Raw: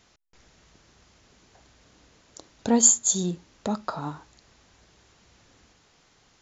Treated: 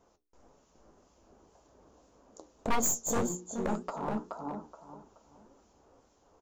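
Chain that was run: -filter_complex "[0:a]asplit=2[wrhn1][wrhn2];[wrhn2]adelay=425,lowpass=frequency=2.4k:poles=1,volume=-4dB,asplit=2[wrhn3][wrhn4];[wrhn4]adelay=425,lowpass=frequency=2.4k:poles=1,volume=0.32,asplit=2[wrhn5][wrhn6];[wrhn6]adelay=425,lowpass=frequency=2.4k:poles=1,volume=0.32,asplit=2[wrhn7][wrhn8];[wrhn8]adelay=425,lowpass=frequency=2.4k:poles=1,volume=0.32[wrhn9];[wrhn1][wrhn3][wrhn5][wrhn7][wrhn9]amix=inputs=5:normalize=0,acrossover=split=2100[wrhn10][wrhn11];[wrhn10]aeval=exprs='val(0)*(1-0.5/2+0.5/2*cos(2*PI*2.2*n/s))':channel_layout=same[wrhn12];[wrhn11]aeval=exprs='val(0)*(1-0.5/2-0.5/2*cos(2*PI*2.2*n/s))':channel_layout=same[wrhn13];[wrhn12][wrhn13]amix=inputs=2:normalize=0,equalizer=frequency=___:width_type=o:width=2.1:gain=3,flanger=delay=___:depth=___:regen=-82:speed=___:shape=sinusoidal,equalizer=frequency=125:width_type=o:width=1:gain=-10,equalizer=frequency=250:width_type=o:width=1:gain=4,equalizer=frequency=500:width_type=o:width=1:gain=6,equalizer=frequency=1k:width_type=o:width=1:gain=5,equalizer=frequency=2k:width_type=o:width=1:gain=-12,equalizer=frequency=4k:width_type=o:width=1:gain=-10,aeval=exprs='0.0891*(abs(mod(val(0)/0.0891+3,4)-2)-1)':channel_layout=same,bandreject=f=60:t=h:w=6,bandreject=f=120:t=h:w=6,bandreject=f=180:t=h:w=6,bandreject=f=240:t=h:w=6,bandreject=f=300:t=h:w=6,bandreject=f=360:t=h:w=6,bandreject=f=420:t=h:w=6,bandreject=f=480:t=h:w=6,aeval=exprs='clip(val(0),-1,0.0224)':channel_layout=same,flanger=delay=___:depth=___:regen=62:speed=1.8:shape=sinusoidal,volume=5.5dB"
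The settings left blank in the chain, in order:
79, 1.9, 3.3, 0.62, 6.9, 6.8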